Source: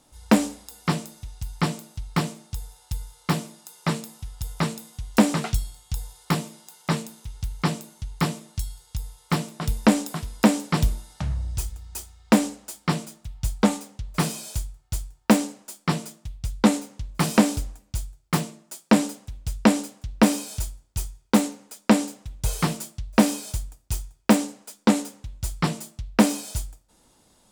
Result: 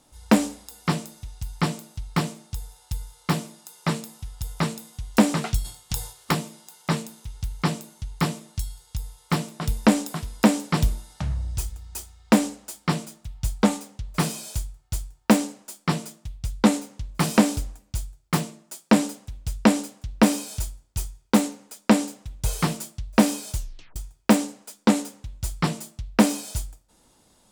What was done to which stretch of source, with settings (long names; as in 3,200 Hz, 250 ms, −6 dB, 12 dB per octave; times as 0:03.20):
0:05.64–0:06.31: ceiling on every frequency bin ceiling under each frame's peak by 14 dB
0:23.55: tape stop 0.41 s